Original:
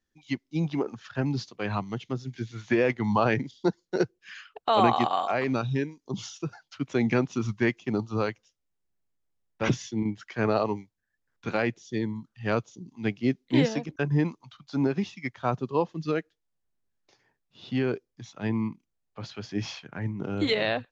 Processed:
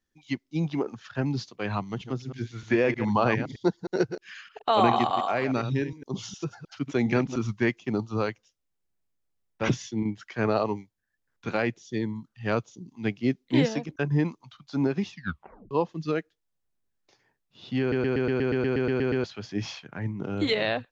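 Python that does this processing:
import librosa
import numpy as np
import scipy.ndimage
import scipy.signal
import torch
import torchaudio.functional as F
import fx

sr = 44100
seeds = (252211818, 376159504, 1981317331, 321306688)

y = fx.reverse_delay(x, sr, ms=103, wet_db=-10, at=(1.81, 7.36))
y = fx.edit(y, sr, fx.tape_stop(start_s=15.11, length_s=0.6),
    fx.stutter_over(start_s=17.8, slice_s=0.12, count=12), tone=tone)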